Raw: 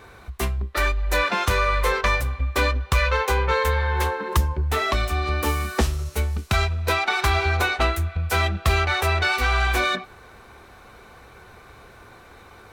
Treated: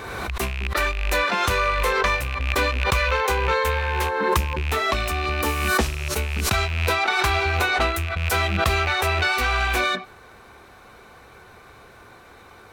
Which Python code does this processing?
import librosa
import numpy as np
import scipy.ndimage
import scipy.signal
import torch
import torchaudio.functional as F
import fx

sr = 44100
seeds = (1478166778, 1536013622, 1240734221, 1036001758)

y = fx.rattle_buzz(x, sr, strikes_db=-27.0, level_db=-19.0)
y = fx.low_shelf(y, sr, hz=84.0, db=-6.5)
y = fx.pre_swell(y, sr, db_per_s=30.0)